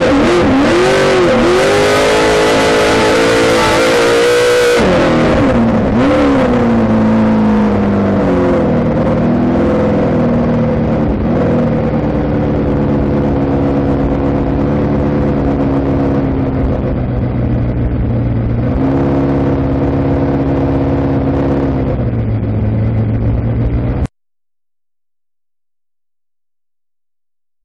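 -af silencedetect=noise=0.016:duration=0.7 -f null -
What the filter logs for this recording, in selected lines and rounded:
silence_start: 24.07
silence_end: 27.65 | silence_duration: 3.58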